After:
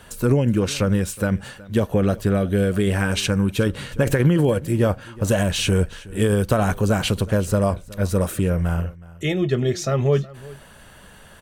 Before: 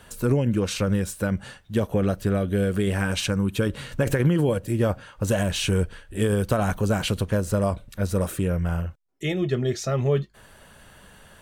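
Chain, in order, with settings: delay 369 ms -20.5 dB; trim +3.5 dB

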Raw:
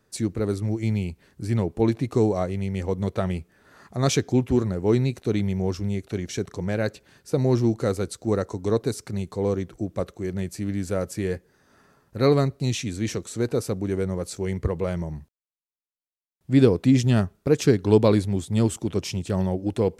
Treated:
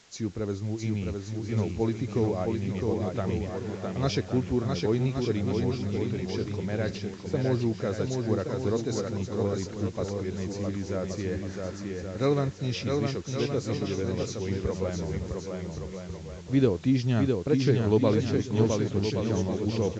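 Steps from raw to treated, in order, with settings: knee-point frequency compression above 3.5 kHz 1.5:1; reverse; upward compressor, threshold -22 dBFS; reverse; word length cut 8-bit, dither triangular; bouncing-ball echo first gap 660 ms, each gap 0.7×, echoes 5; resampled via 16 kHz; trim -6 dB

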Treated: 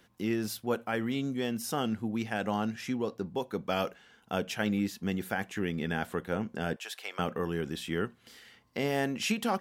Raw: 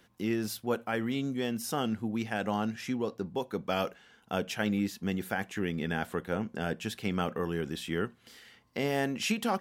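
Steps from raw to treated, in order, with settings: 6.76–7.19 s: high-pass 580 Hz 24 dB/octave

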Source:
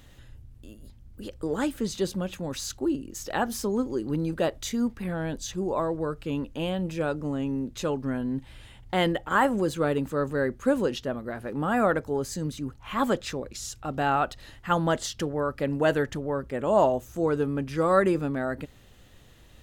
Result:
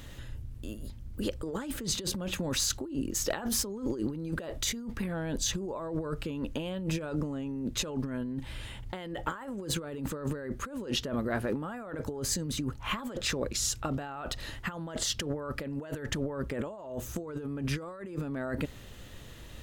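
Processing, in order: band-stop 760 Hz, Q 13; compressor with a negative ratio -35 dBFS, ratio -1

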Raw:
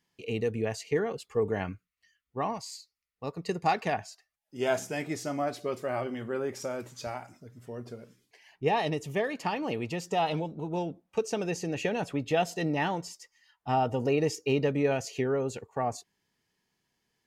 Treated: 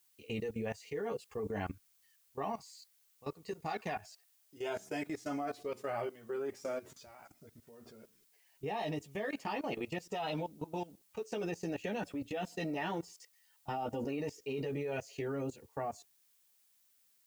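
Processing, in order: chorus voices 6, 0.15 Hz, delay 12 ms, depth 2.5 ms; level held to a coarse grid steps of 19 dB; added noise blue -72 dBFS; trim +1.5 dB

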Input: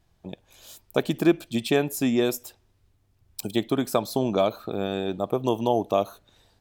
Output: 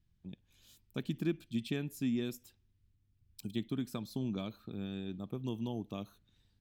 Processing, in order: FFT filter 220 Hz 0 dB, 640 Hz -20 dB, 1.7 kHz -9 dB, 3.1 kHz -6 dB, 8.2 kHz -11 dB; trim -7 dB

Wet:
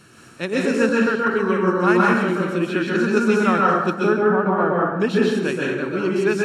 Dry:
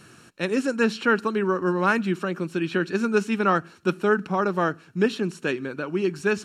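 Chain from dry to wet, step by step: 0.89–1.34 s: level held to a coarse grid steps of 22 dB; 3.93–5.00 s: low-pass 1.6 kHz 12 dB/octave; plate-style reverb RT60 0.99 s, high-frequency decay 0.65×, pre-delay 115 ms, DRR -4 dB

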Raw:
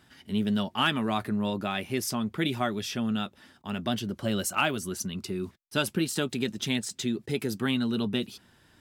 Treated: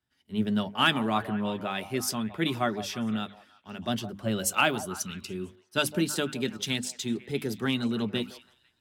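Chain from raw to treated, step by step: hum notches 50/100/150/200/250/300 Hz; on a send: repeats whose band climbs or falls 166 ms, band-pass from 680 Hz, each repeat 0.7 oct, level -8 dB; on the sum: three bands expanded up and down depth 70%

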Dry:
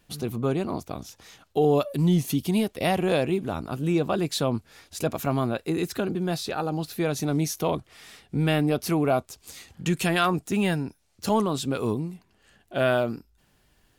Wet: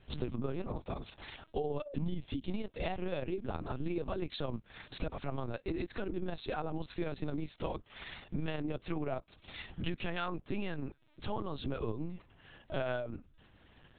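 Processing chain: compression 8:1, threshold -36 dBFS, peak gain reduction 18.5 dB; AM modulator 31 Hz, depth 55%, from 9.66 s modulator 120 Hz; LPC vocoder at 8 kHz pitch kept; trim +6 dB

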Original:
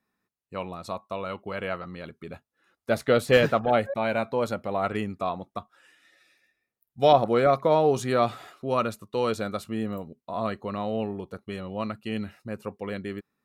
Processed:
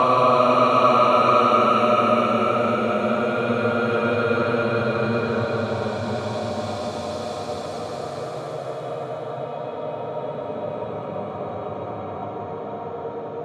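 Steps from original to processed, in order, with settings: echo that smears into a reverb 642 ms, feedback 67%, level -14 dB; level-controlled noise filter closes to 870 Hz, open at -18.5 dBFS; Paulstretch 44×, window 0.10 s, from 8.77 s; trim +5.5 dB

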